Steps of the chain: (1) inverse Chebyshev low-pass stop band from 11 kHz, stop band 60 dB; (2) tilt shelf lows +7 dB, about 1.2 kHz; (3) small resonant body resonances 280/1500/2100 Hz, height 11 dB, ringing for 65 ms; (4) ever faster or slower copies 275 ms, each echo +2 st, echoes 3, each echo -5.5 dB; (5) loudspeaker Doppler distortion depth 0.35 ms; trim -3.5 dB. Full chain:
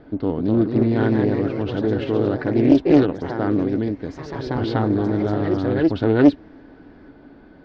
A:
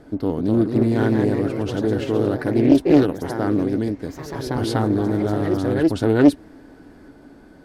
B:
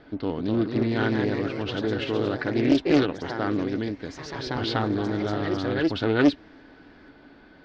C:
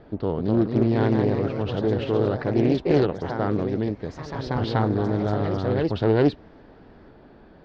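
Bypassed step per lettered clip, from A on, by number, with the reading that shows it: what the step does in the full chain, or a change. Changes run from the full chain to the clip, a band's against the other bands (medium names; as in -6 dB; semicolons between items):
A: 1, 4 kHz band +2.0 dB; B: 2, 4 kHz band +11.0 dB; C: 3, 250 Hz band -5.5 dB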